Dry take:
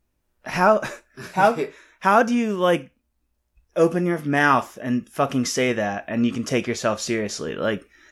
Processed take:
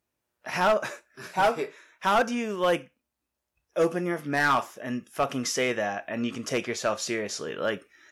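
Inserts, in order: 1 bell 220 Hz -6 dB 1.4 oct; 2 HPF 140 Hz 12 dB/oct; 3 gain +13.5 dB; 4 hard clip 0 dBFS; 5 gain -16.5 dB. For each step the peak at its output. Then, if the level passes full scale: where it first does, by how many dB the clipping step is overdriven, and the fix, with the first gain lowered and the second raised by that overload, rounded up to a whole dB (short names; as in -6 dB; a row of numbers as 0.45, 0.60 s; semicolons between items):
-3.5, -3.5, +10.0, 0.0, -16.5 dBFS; step 3, 10.0 dB; step 3 +3.5 dB, step 5 -6.5 dB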